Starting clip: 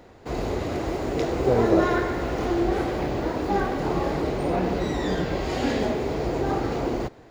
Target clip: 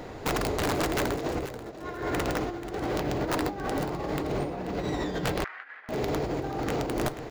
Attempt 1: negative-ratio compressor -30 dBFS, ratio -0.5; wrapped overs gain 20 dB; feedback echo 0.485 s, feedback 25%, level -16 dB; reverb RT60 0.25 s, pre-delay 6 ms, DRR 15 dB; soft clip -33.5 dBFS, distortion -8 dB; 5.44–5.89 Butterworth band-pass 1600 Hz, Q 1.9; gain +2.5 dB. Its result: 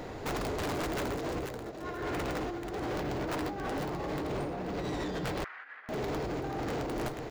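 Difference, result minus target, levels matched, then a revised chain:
soft clip: distortion +11 dB
negative-ratio compressor -30 dBFS, ratio -0.5; wrapped overs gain 20 dB; feedback echo 0.485 s, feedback 25%, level -16 dB; reverb RT60 0.25 s, pre-delay 6 ms, DRR 15 dB; soft clip -22.5 dBFS, distortion -19 dB; 5.44–5.89 Butterworth band-pass 1600 Hz, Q 1.9; gain +2.5 dB

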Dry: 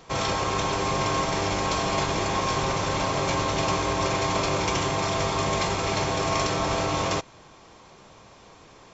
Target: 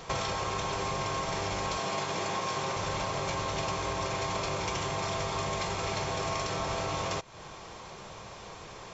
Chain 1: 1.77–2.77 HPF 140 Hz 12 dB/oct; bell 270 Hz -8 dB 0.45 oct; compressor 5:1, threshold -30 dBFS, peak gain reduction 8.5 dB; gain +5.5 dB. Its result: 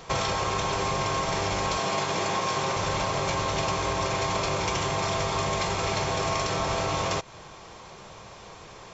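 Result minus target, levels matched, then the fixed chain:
compressor: peak gain reduction -5 dB
1.77–2.77 HPF 140 Hz 12 dB/oct; bell 270 Hz -8 dB 0.45 oct; compressor 5:1, threshold -36.5 dBFS, peak gain reduction 13.5 dB; gain +5.5 dB

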